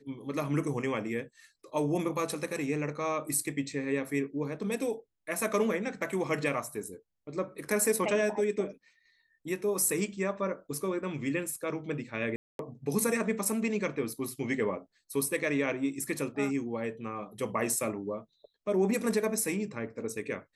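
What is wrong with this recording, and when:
12.36–12.59 s: dropout 232 ms

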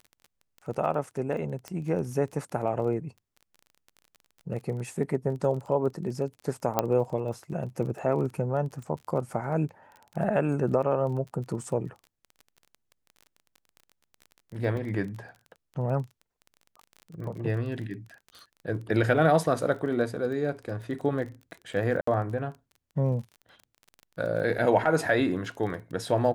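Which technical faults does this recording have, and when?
crackle 24 per s -37 dBFS
1.68 s: pop -22 dBFS
6.79 s: pop -9 dBFS
14.77 s: dropout 3.4 ms
22.01–22.07 s: dropout 64 ms

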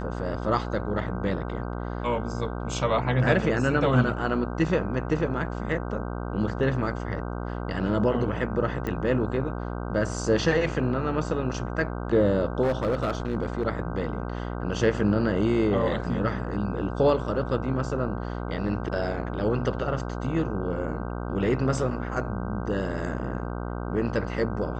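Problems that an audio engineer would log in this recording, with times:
buzz 60 Hz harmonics 26 -32 dBFS
8.87 s: pop -18 dBFS
12.62–13.63 s: clipped -20 dBFS

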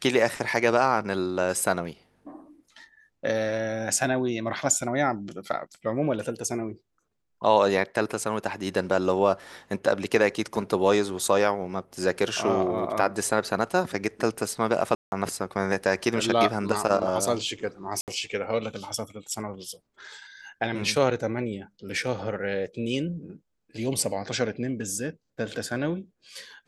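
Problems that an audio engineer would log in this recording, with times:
14.95–15.12 s: dropout 171 ms
18.01–18.08 s: dropout 68 ms

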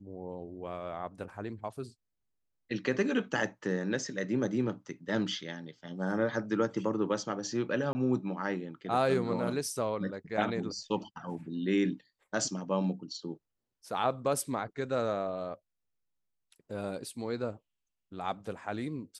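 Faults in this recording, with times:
7.93–7.95 s: dropout 20 ms

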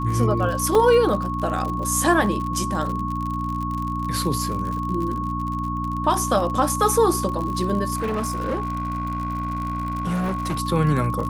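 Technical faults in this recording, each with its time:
crackle 53 per s -27 dBFS
hum 60 Hz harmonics 5 -28 dBFS
whine 1.1 kHz -27 dBFS
0.75 s: dropout 2.7 ms
7.95–10.61 s: clipped -20.5 dBFS

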